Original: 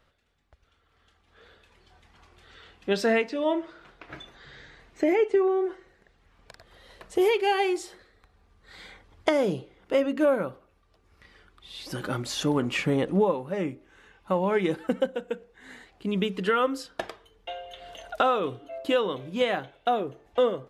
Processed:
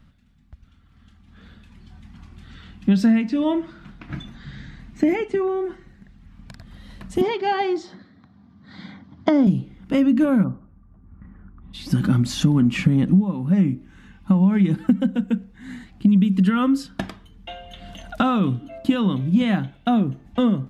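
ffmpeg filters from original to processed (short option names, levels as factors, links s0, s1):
-filter_complex "[0:a]asettb=1/sr,asplit=3[s0][s1][s2];[s0]atrim=end=7.214[s3];[s1]atrim=start=7.21:end=9.47,asetpts=PTS-STARTPTS,afade=t=in:d=0.004:c=qsin,afade=t=out:st=2.256:d=0.004:c=qsin,highpass=f=110:w=0.5412,highpass=f=110:w=1.3066,equalizer=f=280:t=q:w=4:g=6,equalizer=f=650:t=q:w=4:g=7,equalizer=f=1000:t=q:w=4:g=4,equalizer=f=2600:t=q:w=4:g=-10,lowpass=f=5200:w=0.5412,lowpass=f=5200:w=1.3066[s4];[s2]atrim=start=9.466[s5];[s3][s4]acrossfade=d=0.004:c1=hsin:c2=qsin[s6];[s6][s5]acrossfade=d=0.004:c1=qsin:c2=hsin,asplit=3[s7][s8][s9];[s7]afade=t=out:st=10.43:d=0.02[s10];[s8]lowpass=f=1400:w=0.5412,lowpass=f=1400:w=1.3066,afade=t=in:st=10.43:d=0.02,afade=t=out:st=11.73:d=0.02[s11];[s9]afade=t=in:st=11.73:d=0.02[s12];[s10][s11][s12]amix=inputs=3:normalize=0,asettb=1/sr,asplit=3[s13][s14][s15];[s13]atrim=end=16.084[s16];[s14]atrim=start=16.08:end=16.5,asetpts=PTS-STARTPTS,afade=t=in:d=0.004:c=qsin,afade=t=out:st=0.416:d=0.004:c=qsin,highshelf=f=8200:g=8[s17];[s15]atrim=start=16.496[s18];[s16][s17]acrossfade=d=0.004:c1=hsin:c2=qsin[s19];[s19][s18]acrossfade=d=0.004:c1=qsin:c2=hsin,lowshelf=f=310:t=q:w=3:g=12.5,acompressor=threshold=0.158:ratio=10,volume=1.41"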